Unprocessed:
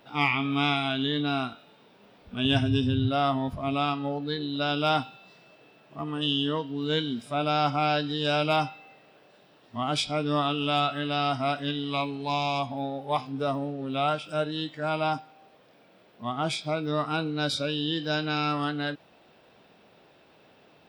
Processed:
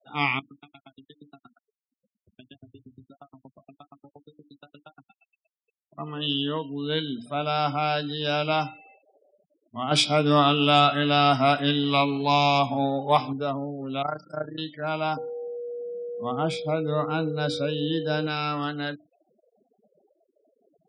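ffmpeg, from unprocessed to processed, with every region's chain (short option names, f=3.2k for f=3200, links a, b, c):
-filter_complex "[0:a]asettb=1/sr,asplit=3[a][b][c];[a]atrim=end=0.394[d];[b]atrim=start=0.39:end=5.98,asetpts=PTS-STARTPTS,afade=t=in:d=0.004:c=qsin,afade=t=out:st=5.586:d=0.004:c=qsin,acompressor=threshold=-41dB:ratio=4:attack=3.2:release=140:knee=1:detection=peak,aeval=exprs='val(0)*pow(10,-38*if(lt(mod(8.5*n/s,1),2*abs(8.5)/1000),1-mod(8.5*n/s,1)/(2*abs(8.5)/1000),(mod(8.5*n/s,1)-2*abs(8.5)/1000)/(1-2*abs(8.5)/1000))/20)':c=same[e];[c]atrim=start=5.976[f];[d][e]acrossfade=d=0.004:c1=hsin:c2=qsin[g];[g][f]acrossfade=d=0.004:c1=qsin:c2=hsin,asettb=1/sr,asplit=3[h][i][j];[h]atrim=end=9.914[k];[i]atrim=start=9.91:end=13.33,asetpts=PTS-STARTPTS,afade=t=in:d=0.004:c=qsin,afade=t=out:st=3.416:d=0.004:c=qsin,acontrast=86,aecho=1:1:139:0.0631,atrim=end_sample=150822[l];[j]atrim=start=13.326[m];[k][l]acrossfade=d=0.004:c1=hsin:c2=qsin[n];[n][m]acrossfade=d=0.004:c1=qsin:c2=hsin,asettb=1/sr,asplit=3[o][p][q];[o]atrim=end=14.024[r];[p]atrim=start=14.02:end=14.58,asetpts=PTS-STARTPTS,afade=t=in:d=0.004:c=qsin,afade=t=out:st=0.556:d=0.004:c=qsin,tremolo=f=28:d=0.857,asuperstop=centerf=3100:order=12:qfactor=1.3[s];[q]atrim=start=14.576[t];[r][s]acrossfade=d=0.004:c1=hsin:c2=qsin[u];[u][t]acrossfade=d=0.004:c1=qsin:c2=hsin,asettb=1/sr,asplit=3[v][w][x];[v]atrim=end=15.174[y];[w]atrim=start=15.17:end=18.27,asetpts=PTS-STARTPTS,afade=t=in:d=0.004:c=qsin,afade=t=out:st=3.096:d=0.004:c=qsin,tiltshelf=f=1.2k:g=4,aeval=exprs='val(0)+0.0282*sin(2*PI*480*n/s)':c=same[z];[x]atrim=start=18.266[aa];[y][z]acrossfade=d=0.004:c1=hsin:c2=qsin[ab];[ab][aa]acrossfade=d=0.004:c1=qsin:c2=hsin,highpass=f=94:w=0.5412,highpass=f=94:w=1.3066,bandreject=f=60:t=h:w=6,bandreject=f=120:t=h:w=6,bandreject=f=180:t=h:w=6,bandreject=f=240:t=h:w=6,bandreject=f=300:t=h:w=6,afftfilt=real='re*gte(hypot(re,im),0.00631)':imag='im*gte(hypot(re,im),0.00631)':win_size=1024:overlap=0.75"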